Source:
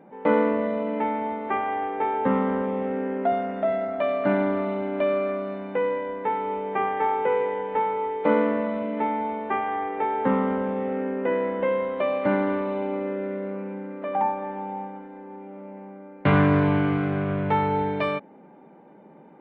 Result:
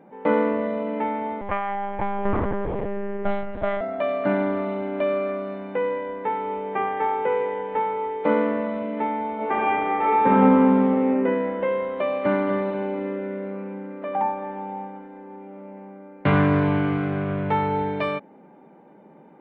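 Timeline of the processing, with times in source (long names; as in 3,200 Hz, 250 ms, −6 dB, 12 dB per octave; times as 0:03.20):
0:01.41–0:03.81: one-pitch LPC vocoder at 8 kHz 200 Hz
0:09.34–0:11.06: thrown reverb, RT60 1.5 s, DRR −5 dB
0:12.00–0:12.46: delay throw 240 ms, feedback 50%, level −8 dB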